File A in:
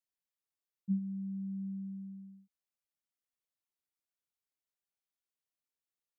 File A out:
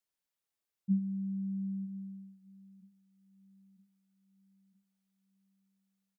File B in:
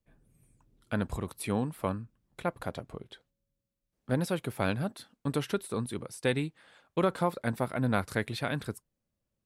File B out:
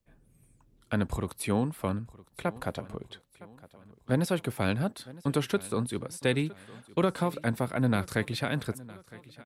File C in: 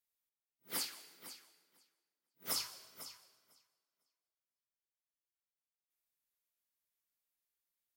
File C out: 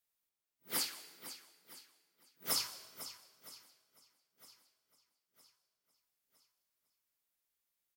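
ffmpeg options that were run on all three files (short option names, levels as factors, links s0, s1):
-filter_complex "[0:a]acrossover=split=360|2000[s0][s1][s2];[s1]alimiter=limit=0.0631:level=0:latency=1:release=172[s3];[s0][s3][s2]amix=inputs=3:normalize=0,aecho=1:1:961|1922|2883|3844:0.1|0.048|0.023|0.0111,volume=1.41"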